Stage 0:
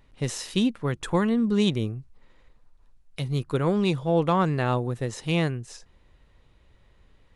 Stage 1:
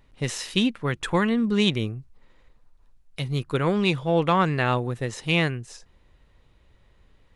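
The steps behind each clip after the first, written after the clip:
dynamic equaliser 2,300 Hz, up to +8 dB, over −44 dBFS, Q 0.78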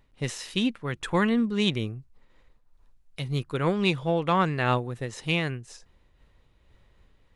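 amplitude modulation by smooth noise, depth 65%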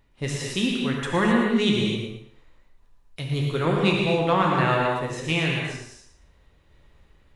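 feedback echo with a high-pass in the loop 114 ms, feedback 27%, high-pass 210 Hz, level −9 dB
reverb whose tail is shaped and stops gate 290 ms flat, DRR −1.5 dB

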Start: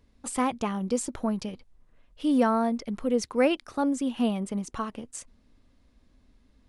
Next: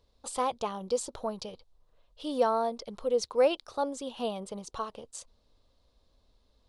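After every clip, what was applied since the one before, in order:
octave-band graphic EQ 250/500/1,000/2,000/4,000 Hz −10/+8/+5/−8/+11 dB
level −6 dB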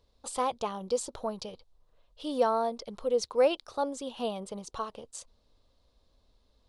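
no processing that can be heard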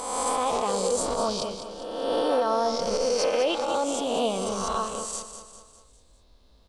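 peak hold with a rise ahead of every peak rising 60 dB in 1.42 s
brickwall limiter −22 dBFS, peak gain reduction 10.5 dB
repeating echo 201 ms, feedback 49%, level −9.5 dB
level +5.5 dB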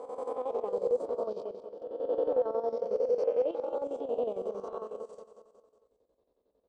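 resonant band-pass 460 Hz, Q 3.1
square-wave tremolo 11 Hz, depth 65%, duty 60%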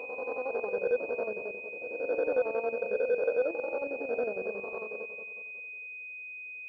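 switching amplifier with a slow clock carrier 2,500 Hz

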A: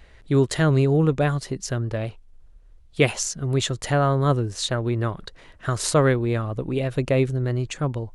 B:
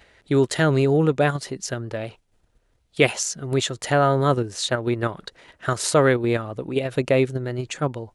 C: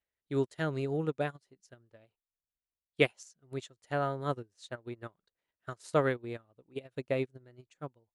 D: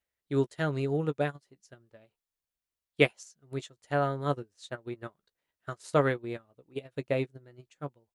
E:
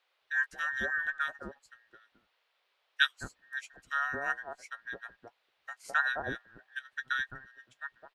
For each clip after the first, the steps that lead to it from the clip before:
in parallel at 0 dB: output level in coarse steps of 23 dB; on the sum: high-pass filter 260 Hz 6 dB per octave; notch filter 1,100 Hz, Q 14
expander for the loud parts 2.5 to 1, over −34 dBFS; level −7 dB
double-tracking delay 14 ms −12 dB; level +2.5 dB
frequency inversion band by band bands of 2,000 Hz; multiband delay without the direct sound highs, lows 210 ms, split 900 Hz; noise in a band 440–3,900 Hz −74 dBFS; level −3 dB

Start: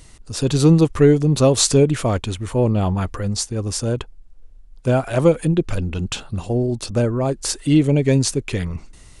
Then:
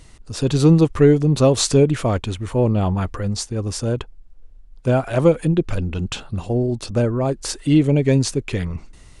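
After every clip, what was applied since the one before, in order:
high-shelf EQ 6,200 Hz −7 dB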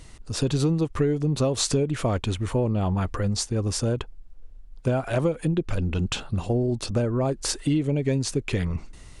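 downward compressor 6 to 1, threshold −20 dBFS, peak gain reduction 11.5 dB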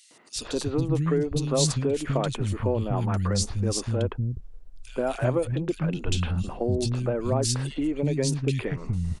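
three-band delay without the direct sound highs, mids, lows 110/360 ms, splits 230/2,500 Hz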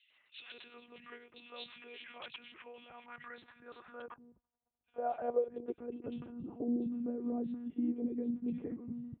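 one-pitch LPC vocoder at 8 kHz 240 Hz
high-pass filter 55 Hz
band-pass filter sweep 2,600 Hz → 270 Hz, 0:02.78–0:06.62
level −3.5 dB

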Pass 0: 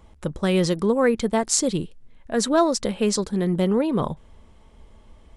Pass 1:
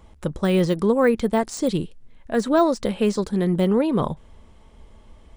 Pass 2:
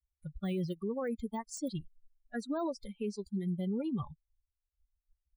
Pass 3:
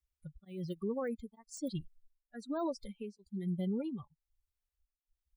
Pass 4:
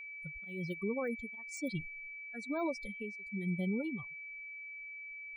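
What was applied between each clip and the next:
de-essing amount 80%; level +1.5 dB
spectral dynamics exaggerated over time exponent 3; dynamic equaliser 2,800 Hz, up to −5 dB, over −44 dBFS, Q 1.1; brickwall limiter −21.5 dBFS, peak gain reduction 11 dB; level −6 dB
tremolo along a rectified sine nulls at 1.1 Hz
steady tone 2,300 Hz −44 dBFS

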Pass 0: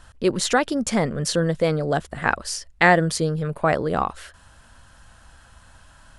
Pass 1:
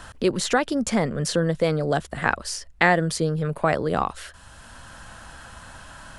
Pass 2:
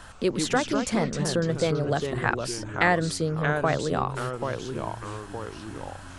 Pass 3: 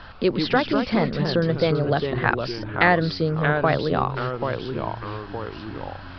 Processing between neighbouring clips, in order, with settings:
multiband upward and downward compressor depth 40%; level −1 dB
delay with pitch and tempo change per echo 97 ms, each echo −3 semitones, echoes 3, each echo −6 dB; level −3.5 dB
downsampling to 11,025 Hz; level +4 dB

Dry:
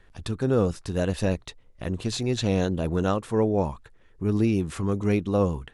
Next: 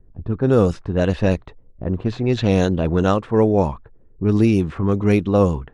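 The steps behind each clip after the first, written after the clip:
low-pass that shuts in the quiet parts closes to 300 Hz, open at −17.5 dBFS
level +7 dB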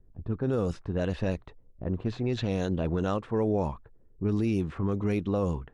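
brickwall limiter −10.5 dBFS, peak gain reduction 6.5 dB
level −8 dB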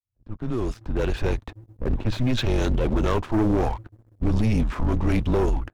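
fade in at the beginning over 1.56 s
frequency shifter −120 Hz
leveller curve on the samples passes 3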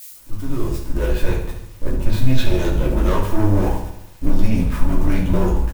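spike at every zero crossing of −27.5 dBFS
repeating echo 71 ms, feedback 57%, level −9.5 dB
rectangular room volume 150 cubic metres, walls furnished, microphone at 2.7 metres
level −5 dB

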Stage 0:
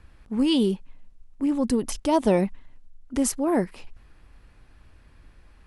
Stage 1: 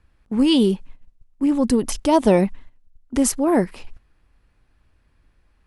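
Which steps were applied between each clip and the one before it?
noise gate −40 dBFS, range −13 dB
level +5 dB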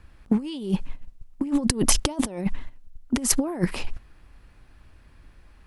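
parametric band 470 Hz −2 dB 0.23 octaves
compressor whose output falls as the input rises −24 dBFS, ratio −0.5
level +2 dB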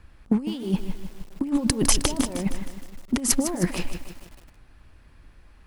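feedback echo at a low word length 156 ms, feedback 55%, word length 7 bits, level −9.5 dB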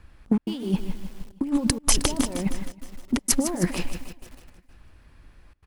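gate pattern "xxxx.xxxxxxxxx." 160 BPM −60 dB
repeating echo 316 ms, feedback 50%, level −24 dB

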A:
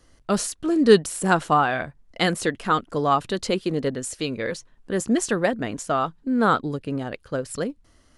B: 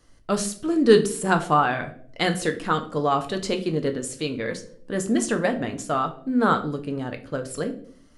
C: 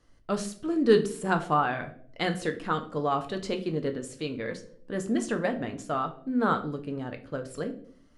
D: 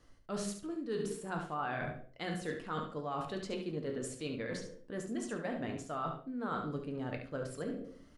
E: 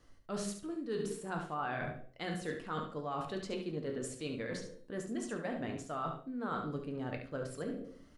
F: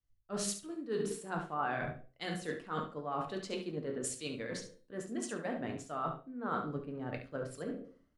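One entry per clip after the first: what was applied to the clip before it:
convolution reverb RT60 0.60 s, pre-delay 7 ms, DRR 5.5 dB; level −2 dB
high-shelf EQ 6,200 Hz −9.5 dB; level −5 dB
reversed playback; downward compressor 6 to 1, threshold −37 dBFS, peak gain reduction 21 dB; reversed playback; repeating echo 70 ms, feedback 15%, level −8 dB; level +1 dB
tuned comb filter 380 Hz, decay 0.73 s, mix 50%; level +5.5 dB
low-shelf EQ 82 Hz −7 dB; multiband upward and downward expander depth 100%; level +1 dB

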